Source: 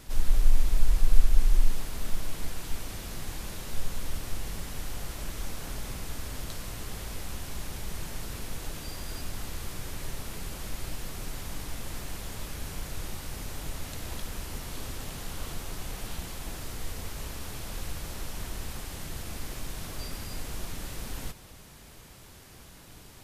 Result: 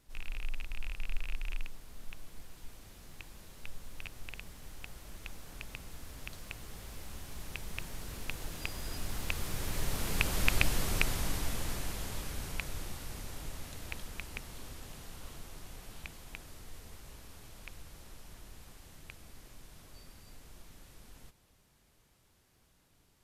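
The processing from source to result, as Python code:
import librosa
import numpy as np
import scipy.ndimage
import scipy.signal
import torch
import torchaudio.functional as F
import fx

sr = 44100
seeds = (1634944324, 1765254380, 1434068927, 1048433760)

y = fx.rattle_buzz(x, sr, strikes_db=-31.0, level_db=-13.0)
y = fx.doppler_pass(y, sr, speed_mps=9, closest_m=6.3, pass_at_s=10.63)
y = y * 10.0 ** (6.0 / 20.0)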